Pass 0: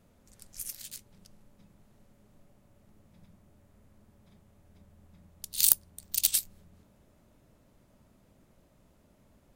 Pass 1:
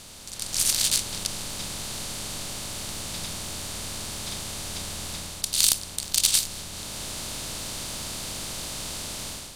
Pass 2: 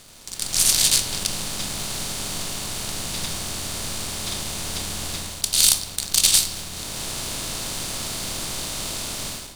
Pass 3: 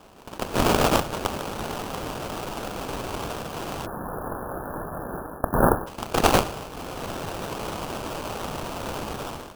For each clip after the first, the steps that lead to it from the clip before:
compressor on every frequency bin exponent 0.4; low-pass filter 7,900 Hz 12 dB per octave; automatic gain control gain up to 11.5 dB
leveller curve on the samples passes 2; on a send at −9 dB: convolution reverb RT60 1.1 s, pre-delay 3 ms; on the sum: level −2 dB
Chebyshev high-pass filter 410 Hz, order 10; sample-rate reduction 2,000 Hz, jitter 20%; time-frequency box erased 0:03.86–0:05.87, 1,800–10,000 Hz; level −1 dB

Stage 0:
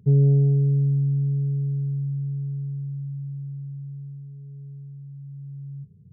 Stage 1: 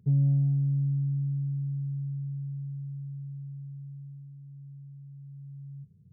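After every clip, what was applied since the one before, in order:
notch filter 420 Hz, Q 12
level −6.5 dB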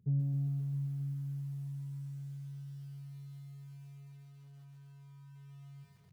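feedback echo at a low word length 133 ms, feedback 80%, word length 9 bits, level −9 dB
level −7.5 dB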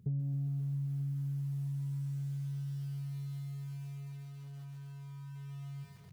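downward compressor 4 to 1, threshold −43 dBFS, peak gain reduction 12 dB
level +8 dB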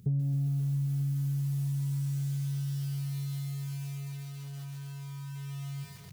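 high-shelf EQ 2,600 Hz +10 dB
level +5.5 dB

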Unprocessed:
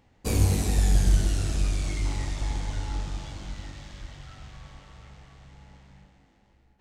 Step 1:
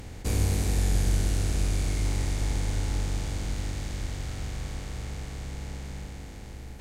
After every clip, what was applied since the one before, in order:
compressor on every frequency bin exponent 0.4
level −6.5 dB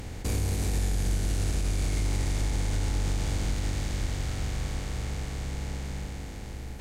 brickwall limiter −22.5 dBFS, peak gain reduction 8.5 dB
level +3 dB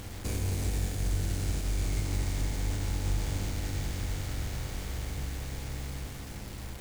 bit reduction 7 bits
convolution reverb RT60 1.7 s, pre-delay 10 ms, DRR 8.5 dB
level −4 dB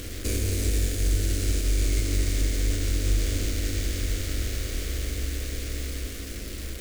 phaser with its sweep stopped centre 360 Hz, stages 4
level +8.5 dB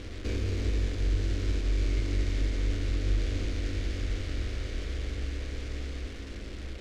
running median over 5 samples
high-frequency loss of the air 77 metres
level −3.5 dB

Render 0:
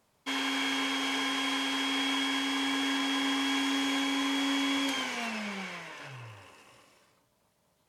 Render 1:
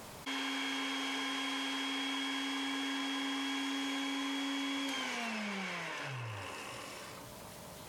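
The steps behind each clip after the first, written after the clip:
envelope flattener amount 70%
level −8 dB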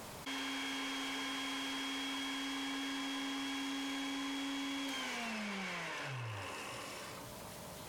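soft clipping −37.5 dBFS, distortion −12 dB
level +1 dB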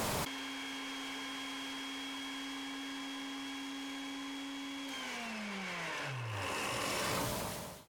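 fade-out on the ending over 0.67 s
compressor whose output falls as the input rises −48 dBFS, ratio −1
level +7 dB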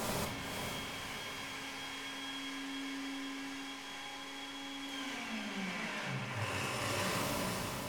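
feedback delay with all-pass diffusion 501 ms, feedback 49%, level −5 dB
rectangular room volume 410 cubic metres, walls mixed, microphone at 1.2 metres
level −3.5 dB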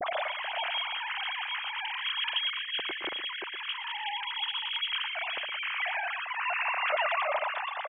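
three sine waves on the formant tracks
single-tap delay 116 ms −11 dB
level +7 dB

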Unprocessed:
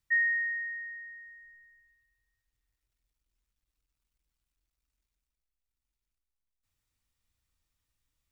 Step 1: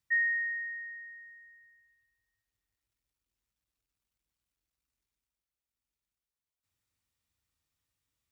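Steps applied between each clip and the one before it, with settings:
high-pass filter 77 Hz 12 dB per octave
level −1.5 dB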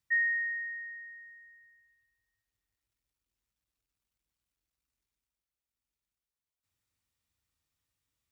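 no processing that can be heard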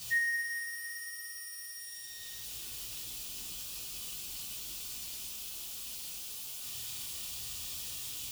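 converter with a step at zero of −42 dBFS
drawn EQ curve 900 Hz 0 dB, 1,400 Hz −3 dB, 2,000 Hz −5 dB, 2,900 Hz +10 dB
coupled-rooms reverb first 0.45 s, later 3.4 s, from −15 dB, DRR −6 dB
level −7 dB

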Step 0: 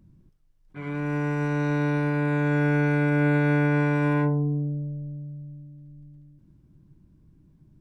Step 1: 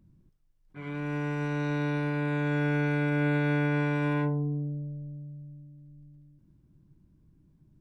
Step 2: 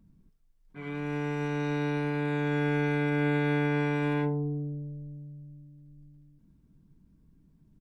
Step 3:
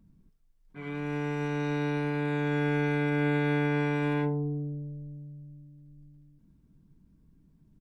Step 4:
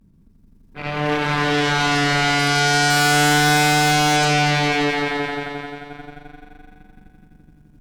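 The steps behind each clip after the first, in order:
dynamic equaliser 3,300 Hz, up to +7 dB, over −53 dBFS, Q 1.8; level −5 dB
comb filter 4.4 ms, depth 45%
no processing that can be heard
echo that builds up and dies away 86 ms, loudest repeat 5, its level −4.5 dB; pitch vibrato 0.32 Hz 32 cents; harmonic generator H 8 −7 dB, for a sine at −17.5 dBFS; level +6.5 dB

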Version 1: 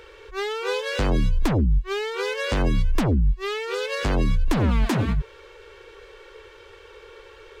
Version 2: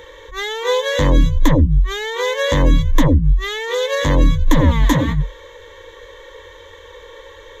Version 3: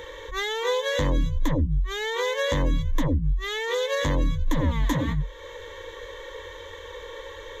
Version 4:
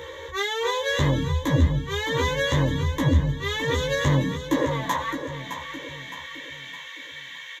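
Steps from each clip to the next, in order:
EQ curve with evenly spaced ripples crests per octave 1.1, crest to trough 15 dB; level +4.5 dB
downward compressor 2 to 1, threshold −28 dBFS, peak gain reduction 11.5 dB
high-pass filter sweep 96 Hz → 2,200 Hz, 0:04.03–0:05.36; double-tracking delay 15 ms −3 dB; repeating echo 613 ms, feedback 45%, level −9.5 dB

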